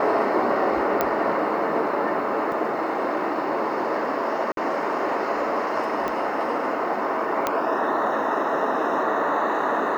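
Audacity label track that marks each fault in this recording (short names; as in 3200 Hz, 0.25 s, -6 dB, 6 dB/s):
1.010000	1.010000	pop -7 dBFS
2.520000	2.520000	gap 2.5 ms
4.520000	4.570000	gap 52 ms
6.080000	6.080000	pop -15 dBFS
7.470000	7.470000	pop -7 dBFS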